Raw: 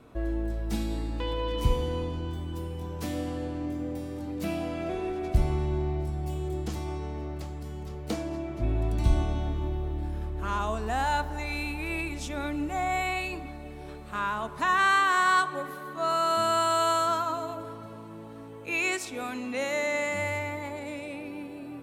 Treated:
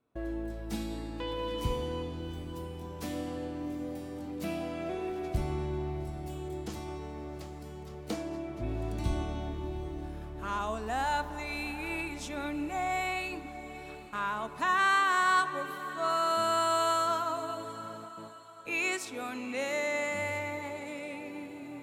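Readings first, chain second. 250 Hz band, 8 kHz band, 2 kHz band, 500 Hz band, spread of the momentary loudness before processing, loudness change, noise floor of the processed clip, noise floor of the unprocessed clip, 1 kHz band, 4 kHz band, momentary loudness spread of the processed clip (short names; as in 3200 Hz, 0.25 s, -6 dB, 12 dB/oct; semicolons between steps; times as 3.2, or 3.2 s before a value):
-3.5 dB, -3.0 dB, -3.0 dB, -3.0 dB, 14 LU, -3.5 dB, -45 dBFS, -42 dBFS, -3.0 dB, -3.0 dB, 15 LU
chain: gate with hold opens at -34 dBFS; low shelf 64 Hz -12 dB; on a send: diffused feedback echo 0.761 s, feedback 40%, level -15.5 dB; on the sum: gain -3 dB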